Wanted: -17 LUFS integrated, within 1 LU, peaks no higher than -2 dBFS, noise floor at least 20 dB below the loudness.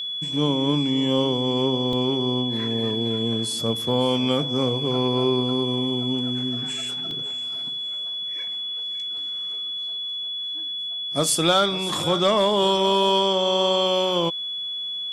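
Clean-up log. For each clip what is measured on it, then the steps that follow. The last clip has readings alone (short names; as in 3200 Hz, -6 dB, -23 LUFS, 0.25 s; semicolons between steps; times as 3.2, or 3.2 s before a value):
dropouts 2; longest dropout 1.4 ms; steady tone 3400 Hz; tone level -27 dBFS; loudness -22.5 LUFS; peak -9.0 dBFS; loudness target -17.0 LUFS
-> interpolate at 1.93/7.11, 1.4 ms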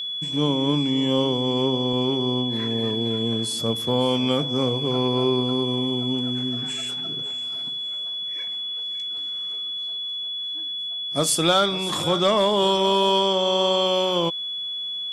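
dropouts 0; steady tone 3400 Hz; tone level -27 dBFS
-> notch 3400 Hz, Q 30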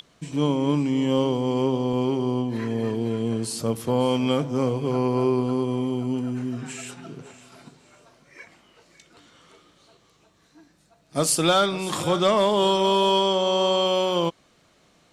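steady tone none; loudness -23.0 LUFS; peak -9.5 dBFS; loudness target -17.0 LUFS
-> gain +6 dB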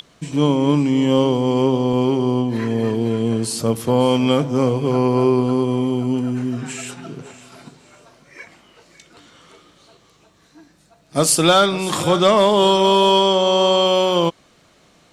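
loudness -17.0 LUFS; peak -3.5 dBFS; noise floor -55 dBFS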